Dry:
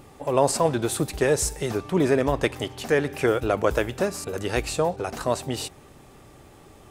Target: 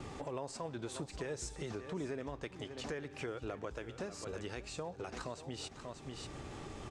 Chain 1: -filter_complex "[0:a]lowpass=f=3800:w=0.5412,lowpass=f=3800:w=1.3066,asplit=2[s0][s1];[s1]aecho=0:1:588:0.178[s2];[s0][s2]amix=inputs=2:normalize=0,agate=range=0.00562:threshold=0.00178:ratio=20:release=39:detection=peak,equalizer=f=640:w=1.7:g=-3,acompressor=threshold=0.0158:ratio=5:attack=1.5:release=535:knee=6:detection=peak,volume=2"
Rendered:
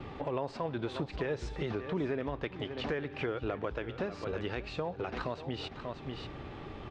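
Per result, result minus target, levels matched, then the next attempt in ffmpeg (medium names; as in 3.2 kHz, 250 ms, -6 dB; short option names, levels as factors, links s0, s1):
8 kHz band -19.5 dB; compression: peak gain reduction -7 dB
-filter_complex "[0:a]lowpass=f=7700:w=0.5412,lowpass=f=7700:w=1.3066,asplit=2[s0][s1];[s1]aecho=0:1:588:0.178[s2];[s0][s2]amix=inputs=2:normalize=0,agate=range=0.00562:threshold=0.00178:ratio=20:release=39:detection=peak,equalizer=f=640:w=1.7:g=-3,acompressor=threshold=0.0158:ratio=5:attack=1.5:release=535:knee=6:detection=peak,volume=2"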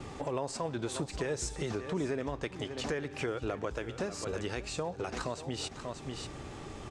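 compression: peak gain reduction -7 dB
-filter_complex "[0:a]lowpass=f=7700:w=0.5412,lowpass=f=7700:w=1.3066,asplit=2[s0][s1];[s1]aecho=0:1:588:0.178[s2];[s0][s2]amix=inputs=2:normalize=0,agate=range=0.00562:threshold=0.00178:ratio=20:release=39:detection=peak,equalizer=f=640:w=1.7:g=-3,acompressor=threshold=0.00596:ratio=5:attack=1.5:release=535:knee=6:detection=peak,volume=2"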